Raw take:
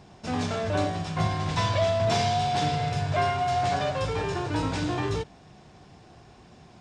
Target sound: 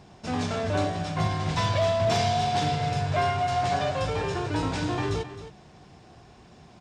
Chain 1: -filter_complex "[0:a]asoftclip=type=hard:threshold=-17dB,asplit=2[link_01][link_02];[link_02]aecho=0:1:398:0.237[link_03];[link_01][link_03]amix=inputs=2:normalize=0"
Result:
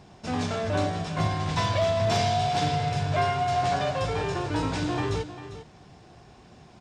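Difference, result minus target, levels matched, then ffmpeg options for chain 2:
echo 133 ms late
-filter_complex "[0:a]asoftclip=type=hard:threshold=-17dB,asplit=2[link_01][link_02];[link_02]aecho=0:1:265:0.237[link_03];[link_01][link_03]amix=inputs=2:normalize=0"

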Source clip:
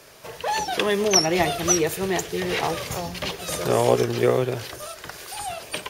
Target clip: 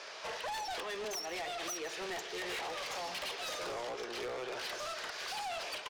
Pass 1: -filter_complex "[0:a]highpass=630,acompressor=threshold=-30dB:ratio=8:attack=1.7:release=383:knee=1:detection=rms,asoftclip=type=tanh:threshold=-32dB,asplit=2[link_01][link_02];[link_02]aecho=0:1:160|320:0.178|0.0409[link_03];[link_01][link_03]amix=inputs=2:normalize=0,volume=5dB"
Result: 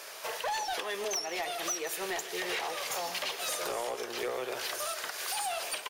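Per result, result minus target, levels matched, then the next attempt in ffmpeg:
soft clipping: distortion −8 dB; 8,000 Hz band +4.0 dB
-filter_complex "[0:a]highpass=630,acompressor=threshold=-30dB:ratio=8:attack=1.7:release=383:knee=1:detection=rms,asoftclip=type=tanh:threshold=-41.5dB,asplit=2[link_01][link_02];[link_02]aecho=0:1:160|320:0.178|0.0409[link_03];[link_01][link_03]amix=inputs=2:normalize=0,volume=5dB"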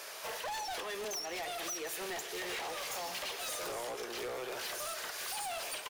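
8,000 Hz band +4.0 dB
-filter_complex "[0:a]highpass=630,acompressor=threshold=-30dB:ratio=8:attack=1.7:release=383:knee=1:detection=rms,lowpass=frequency=5700:width=0.5412,lowpass=frequency=5700:width=1.3066,asoftclip=type=tanh:threshold=-41.5dB,asplit=2[link_01][link_02];[link_02]aecho=0:1:160|320:0.178|0.0409[link_03];[link_01][link_03]amix=inputs=2:normalize=0,volume=5dB"

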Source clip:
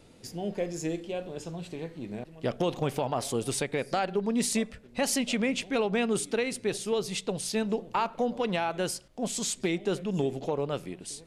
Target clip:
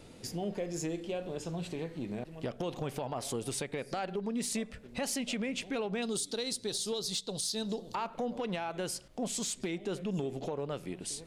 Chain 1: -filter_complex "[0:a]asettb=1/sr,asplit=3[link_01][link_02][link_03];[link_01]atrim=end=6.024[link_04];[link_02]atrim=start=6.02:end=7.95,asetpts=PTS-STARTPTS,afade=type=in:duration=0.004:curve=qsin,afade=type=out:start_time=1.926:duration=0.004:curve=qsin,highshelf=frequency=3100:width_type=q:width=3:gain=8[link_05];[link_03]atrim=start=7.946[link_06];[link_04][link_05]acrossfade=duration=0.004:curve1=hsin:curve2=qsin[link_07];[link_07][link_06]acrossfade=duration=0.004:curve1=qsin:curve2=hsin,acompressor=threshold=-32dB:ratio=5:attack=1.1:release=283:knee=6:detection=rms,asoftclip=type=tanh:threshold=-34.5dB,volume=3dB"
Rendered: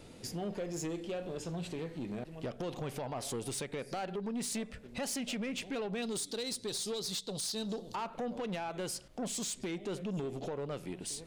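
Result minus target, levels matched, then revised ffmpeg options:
soft clipping: distortion +14 dB
-filter_complex "[0:a]asettb=1/sr,asplit=3[link_01][link_02][link_03];[link_01]atrim=end=6.024[link_04];[link_02]atrim=start=6.02:end=7.95,asetpts=PTS-STARTPTS,afade=type=in:duration=0.004:curve=qsin,afade=type=out:start_time=1.926:duration=0.004:curve=qsin,highshelf=frequency=3100:width_type=q:width=3:gain=8[link_05];[link_03]atrim=start=7.946[link_06];[link_04][link_05]acrossfade=duration=0.004:curve1=hsin:curve2=qsin[link_07];[link_07][link_06]acrossfade=duration=0.004:curve1=qsin:curve2=hsin,acompressor=threshold=-32dB:ratio=5:attack=1.1:release=283:knee=6:detection=rms,asoftclip=type=tanh:threshold=-25dB,volume=3dB"

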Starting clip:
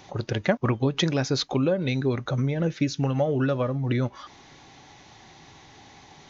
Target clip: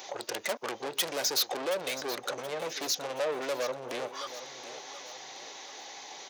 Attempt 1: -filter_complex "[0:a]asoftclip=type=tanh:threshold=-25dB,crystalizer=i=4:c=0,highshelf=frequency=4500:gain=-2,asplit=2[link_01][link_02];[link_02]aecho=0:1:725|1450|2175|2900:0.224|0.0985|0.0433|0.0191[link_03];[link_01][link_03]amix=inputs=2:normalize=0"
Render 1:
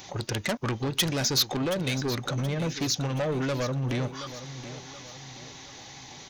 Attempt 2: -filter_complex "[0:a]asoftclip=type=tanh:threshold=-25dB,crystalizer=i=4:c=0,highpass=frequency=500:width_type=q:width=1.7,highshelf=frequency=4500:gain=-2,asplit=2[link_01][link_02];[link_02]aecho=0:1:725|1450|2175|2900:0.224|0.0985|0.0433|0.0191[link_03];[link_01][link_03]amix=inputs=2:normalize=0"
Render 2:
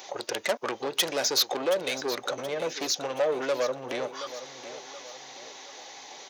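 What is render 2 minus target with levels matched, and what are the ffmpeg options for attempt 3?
soft clipping: distortion −4 dB
-filter_complex "[0:a]asoftclip=type=tanh:threshold=-32dB,crystalizer=i=4:c=0,highpass=frequency=500:width_type=q:width=1.7,highshelf=frequency=4500:gain=-2,asplit=2[link_01][link_02];[link_02]aecho=0:1:725|1450|2175|2900:0.224|0.0985|0.0433|0.0191[link_03];[link_01][link_03]amix=inputs=2:normalize=0"

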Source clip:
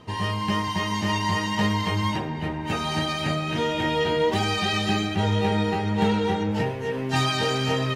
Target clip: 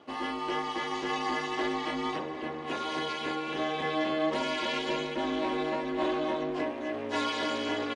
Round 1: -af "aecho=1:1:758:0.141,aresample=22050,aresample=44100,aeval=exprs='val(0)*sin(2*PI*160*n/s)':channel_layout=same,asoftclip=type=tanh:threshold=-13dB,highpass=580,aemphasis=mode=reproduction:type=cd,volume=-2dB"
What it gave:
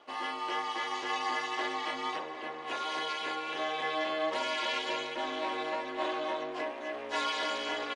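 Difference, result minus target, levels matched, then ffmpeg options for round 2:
250 Hz band −8.0 dB
-af "aecho=1:1:758:0.141,aresample=22050,aresample=44100,aeval=exprs='val(0)*sin(2*PI*160*n/s)':channel_layout=same,asoftclip=type=tanh:threshold=-13dB,highpass=230,aemphasis=mode=reproduction:type=cd,volume=-2dB"

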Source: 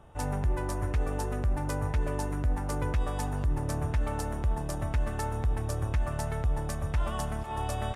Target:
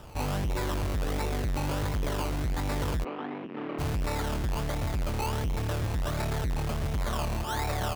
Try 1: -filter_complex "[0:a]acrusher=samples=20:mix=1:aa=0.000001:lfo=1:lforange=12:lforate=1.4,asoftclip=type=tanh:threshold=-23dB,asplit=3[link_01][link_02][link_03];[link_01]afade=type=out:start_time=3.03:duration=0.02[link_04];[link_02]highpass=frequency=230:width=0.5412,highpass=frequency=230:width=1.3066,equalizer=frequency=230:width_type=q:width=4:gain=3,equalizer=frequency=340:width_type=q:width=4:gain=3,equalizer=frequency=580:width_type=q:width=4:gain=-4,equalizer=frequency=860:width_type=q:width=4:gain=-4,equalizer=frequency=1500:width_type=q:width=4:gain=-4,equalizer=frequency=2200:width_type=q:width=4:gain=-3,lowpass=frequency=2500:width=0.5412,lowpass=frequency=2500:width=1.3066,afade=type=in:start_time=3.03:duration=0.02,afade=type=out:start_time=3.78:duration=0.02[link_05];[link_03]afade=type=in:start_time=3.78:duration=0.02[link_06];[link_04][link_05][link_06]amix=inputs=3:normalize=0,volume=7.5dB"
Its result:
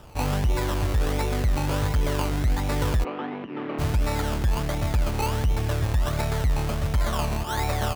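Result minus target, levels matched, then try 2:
soft clipping: distortion −11 dB
-filter_complex "[0:a]acrusher=samples=20:mix=1:aa=0.000001:lfo=1:lforange=12:lforate=1.4,asoftclip=type=tanh:threshold=-34dB,asplit=3[link_01][link_02][link_03];[link_01]afade=type=out:start_time=3.03:duration=0.02[link_04];[link_02]highpass=frequency=230:width=0.5412,highpass=frequency=230:width=1.3066,equalizer=frequency=230:width_type=q:width=4:gain=3,equalizer=frequency=340:width_type=q:width=4:gain=3,equalizer=frequency=580:width_type=q:width=4:gain=-4,equalizer=frequency=860:width_type=q:width=4:gain=-4,equalizer=frequency=1500:width_type=q:width=4:gain=-4,equalizer=frequency=2200:width_type=q:width=4:gain=-3,lowpass=frequency=2500:width=0.5412,lowpass=frequency=2500:width=1.3066,afade=type=in:start_time=3.03:duration=0.02,afade=type=out:start_time=3.78:duration=0.02[link_05];[link_03]afade=type=in:start_time=3.78:duration=0.02[link_06];[link_04][link_05][link_06]amix=inputs=3:normalize=0,volume=7.5dB"

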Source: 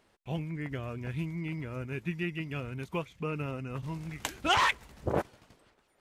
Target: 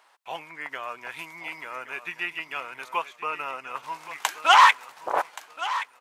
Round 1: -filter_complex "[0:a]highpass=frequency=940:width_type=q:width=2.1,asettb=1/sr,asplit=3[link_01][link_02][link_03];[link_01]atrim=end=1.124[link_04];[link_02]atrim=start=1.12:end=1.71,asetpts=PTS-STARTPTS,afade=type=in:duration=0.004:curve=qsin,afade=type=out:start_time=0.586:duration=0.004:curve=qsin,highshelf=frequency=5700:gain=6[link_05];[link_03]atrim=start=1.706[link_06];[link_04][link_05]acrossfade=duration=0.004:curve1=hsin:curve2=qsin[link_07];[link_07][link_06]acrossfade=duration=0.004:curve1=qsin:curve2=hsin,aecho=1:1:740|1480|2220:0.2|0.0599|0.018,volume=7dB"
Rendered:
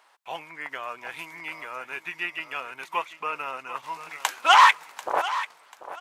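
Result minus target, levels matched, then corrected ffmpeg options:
echo 385 ms early
-filter_complex "[0:a]highpass=frequency=940:width_type=q:width=2.1,asettb=1/sr,asplit=3[link_01][link_02][link_03];[link_01]atrim=end=1.124[link_04];[link_02]atrim=start=1.12:end=1.71,asetpts=PTS-STARTPTS,afade=type=in:duration=0.004:curve=qsin,afade=type=out:start_time=0.586:duration=0.004:curve=qsin,highshelf=frequency=5700:gain=6[link_05];[link_03]atrim=start=1.706[link_06];[link_04][link_05]acrossfade=duration=0.004:curve1=hsin:curve2=qsin[link_07];[link_07][link_06]acrossfade=duration=0.004:curve1=qsin:curve2=hsin,aecho=1:1:1125|2250|3375:0.2|0.0599|0.018,volume=7dB"

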